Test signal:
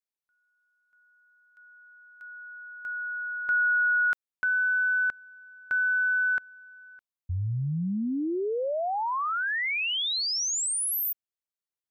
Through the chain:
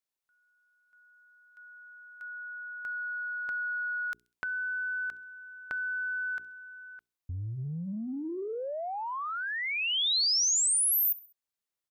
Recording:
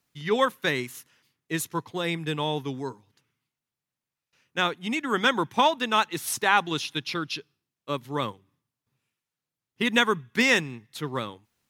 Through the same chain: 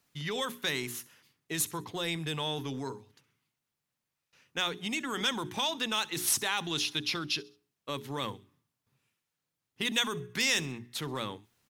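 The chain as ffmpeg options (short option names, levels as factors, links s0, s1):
-filter_complex "[0:a]bandreject=f=60:t=h:w=6,bandreject=f=120:t=h:w=6,bandreject=f=180:t=h:w=6,bandreject=f=240:t=h:w=6,bandreject=f=300:t=h:w=6,bandreject=f=360:t=h:w=6,bandreject=f=420:t=h:w=6,acrossover=split=3400[s0][s1];[s0]acompressor=threshold=0.0126:ratio=6:attack=4.8:release=21:knee=6:detection=peak[s2];[s1]aecho=1:1:66|132|198:0.106|0.0434|0.0178[s3];[s2][s3]amix=inputs=2:normalize=0,volume=1.33"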